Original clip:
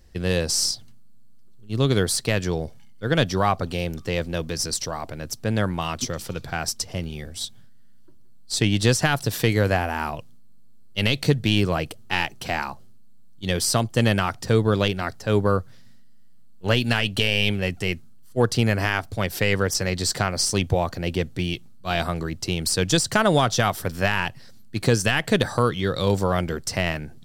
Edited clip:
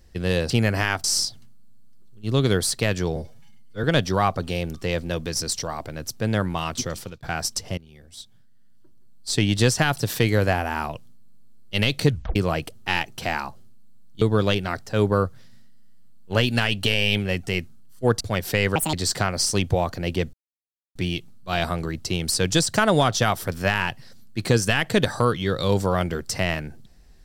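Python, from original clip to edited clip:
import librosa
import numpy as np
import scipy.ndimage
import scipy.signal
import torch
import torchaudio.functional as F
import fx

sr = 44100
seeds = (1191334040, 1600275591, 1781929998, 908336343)

y = fx.edit(x, sr, fx.stretch_span(start_s=2.62, length_s=0.45, factor=1.5),
    fx.fade_out_span(start_s=6.2, length_s=0.26),
    fx.fade_in_from(start_s=7.01, length_s=1.7, floor_db=-20.0),
    fx.tape_stop(start_s=11.33, length_s=0.26),
    fx.cut(start_s=13.45, length_s=1.1),
    fx.move(start_s=18.54, length_s=0.54, to_s=0.5),
    fx.speed_span(start_s=19.63, length_s=0.3, speed=1.68),
    fx.insert_silence(at_s=21.33, length_s=0.62), tone=tone)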